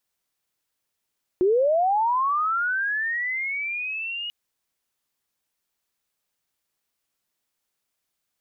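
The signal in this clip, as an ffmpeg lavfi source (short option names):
-f lavfi -i "aevalsrc='pow(10,(-16-12.5*t/2.89)/20)*sin(2*PI*(350*t+2550*t*t/(2*2.89)))':d=2.89:s=44100"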